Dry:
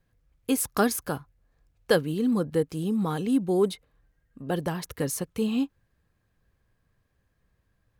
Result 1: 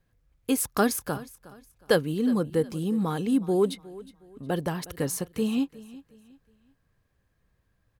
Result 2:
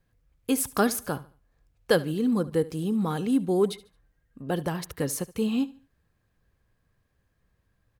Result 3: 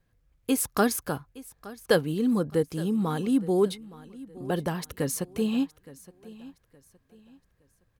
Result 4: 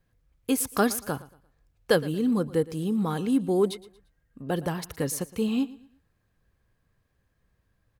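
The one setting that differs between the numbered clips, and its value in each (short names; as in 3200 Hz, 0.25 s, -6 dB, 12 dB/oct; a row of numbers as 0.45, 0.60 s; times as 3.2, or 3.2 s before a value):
feedback echo, time: 363, 73, 867, 115 ms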